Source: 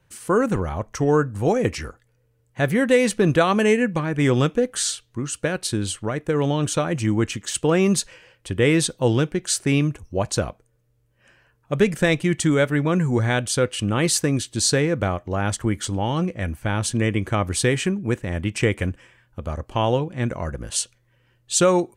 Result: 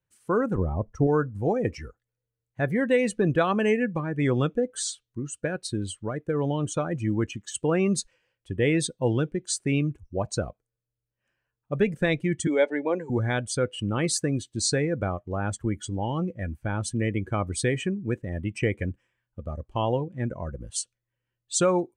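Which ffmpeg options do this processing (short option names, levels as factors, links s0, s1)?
-filter_complex "[0:a]asettb=1/sr,asplit=3[s0][s1][s2];[s0]atrim=end=0.584[s3];[s1]atrim=start=0.58:end=1.07,asetpts=PTS-STARTPTS,afade=t=in:d=0.004:c=qsin,afade=t=out:st=0.486:d=0.004:c=qsin,tiltshelf=f=920:g=6[s4];[s2]atrim=start=1.066[s5];[s3][s4]acrossfade=d=0.004:c1=hsin:c2=qsin[s6];[s6][s5]acrossfade=d=0.004:c1=qsin:c2=hsin,asettb=1/sr,asplit=3[s7][s8][s9];[s7]atrim=end=12.474[s10];[s8]atrim=start=12.47:end=13.1,asetpts=PTS-STARTPTS,afade=t=in:d=0.004:c=qsin,afade=t=out:st=0.626:d=0.004:c=qsin,highpass=f=270:w=0.5412,highpass=f=270:w=1.3066,equalizer=f=520:t=q:w=4:g=6,equalizer=f=850:t=q:w=4:g=6,equalizer=f=1300:t=q:w=4:g=-7,equalizer=f=2200:t=q:w=4:g=3,equalizer=f=4200:t=q:w=4:g=4,lowpass=f=8300:w=0.5412,lowpass=f=8300:w=1.3066[s11];[s9]atrim=start=13.096[s12];[s10][s11]acrossfade=d=0.004:c1=hsin:c2=qsin[s13];[s13][s12]acrossfade=d=0.004:c1=qsin:c2=hsin,afftdn=nr=17:nf=-28,volume=0.562"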